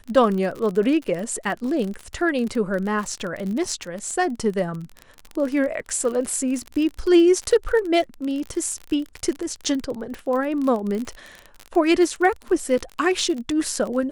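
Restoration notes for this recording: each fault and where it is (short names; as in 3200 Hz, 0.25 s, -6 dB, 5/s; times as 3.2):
crackle 38/s -26 dBFS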